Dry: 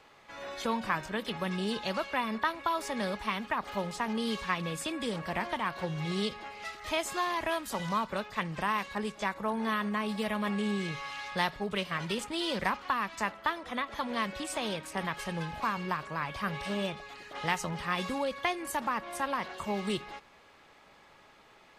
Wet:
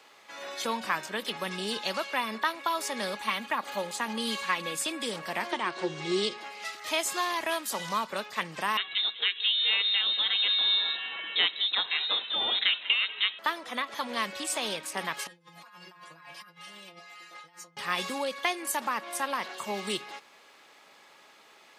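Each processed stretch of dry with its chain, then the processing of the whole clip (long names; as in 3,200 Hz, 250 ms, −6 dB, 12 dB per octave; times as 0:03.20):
0:03.16–0:04.75: notch filter 5,400 Hz, Q 8.1 + comb filter 3.6 ms, depth 41%
0:05.51–0:06.38: Butterworth low-pass 8,900 Hz 96 dB per octave + parametric band 360 Hz +13.5 dB 0.25 octaves
0:08.77–0:13.39: single-tap delay 193 ms −18 dB + voice inversion scrambler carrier 3,900 Hz
0:15.27–0:17.77: mains-hum notches 60/120/180/240/300/360/420 Hz + stiff-string resonator 170 Hz, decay 0.29 s, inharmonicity 0.002 + compressor whose output falls as the input rises −52 dBFS
whole clip: high-pass filter 250 Hz 12 dB per octave; high-shelf EQ 2,900 Hz +9 dB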